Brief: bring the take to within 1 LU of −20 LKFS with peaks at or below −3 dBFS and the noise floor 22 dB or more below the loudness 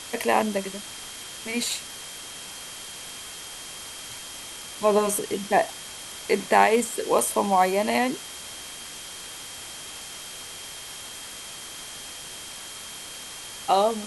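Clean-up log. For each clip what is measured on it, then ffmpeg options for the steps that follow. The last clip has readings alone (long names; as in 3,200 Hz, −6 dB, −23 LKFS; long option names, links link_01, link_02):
interfering tone 3,200 Hz; level of the tone −44 dBFS; background noise floor −39 dBFS; target noise floor −50 dBFS; integrated loudness −27.5 LKFS; sample peak −5.5 dBFS; target loudness −20.0 LKFS
→ -af "bandreject=frequency=3200:width=30"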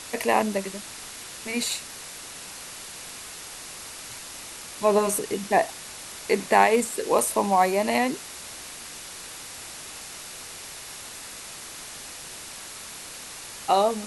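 interfering tone none found; background noise floor −40 dBFS; target noise floor −50 dBFS
→ -af "afftdn=noise_reduction=10:noise_floor=-40"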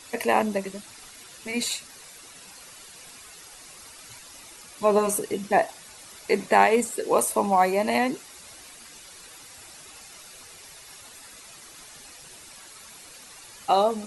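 background noise floor −47 dBFS; integrated loudness −24.0 LKFS; sample peak −5.5 dBFS; target loudness −20.0 LKFS
→ -af "volume=4dB,alimiter=limit=-3dB:level=0:latency=1"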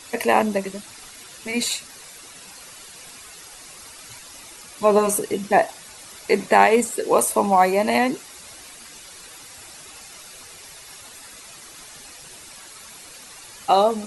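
integrated loudness −20.0 LKFS; sample peak −3.0 dBFS; background noise floor −43 dBFS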